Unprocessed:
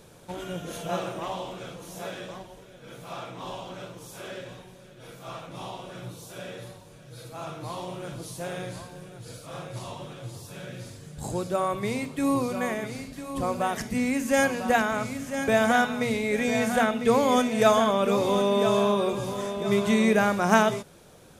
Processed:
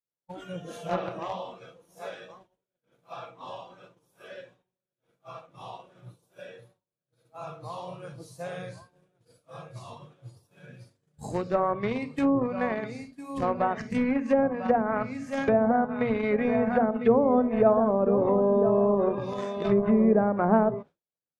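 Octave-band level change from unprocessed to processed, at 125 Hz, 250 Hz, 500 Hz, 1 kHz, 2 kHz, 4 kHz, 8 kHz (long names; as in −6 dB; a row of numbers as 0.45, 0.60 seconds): −1.5 dB, +0.5 dB, +0.5 dB, −2.5 dB, −8.5 dB, −14.0 dB, below −15 dB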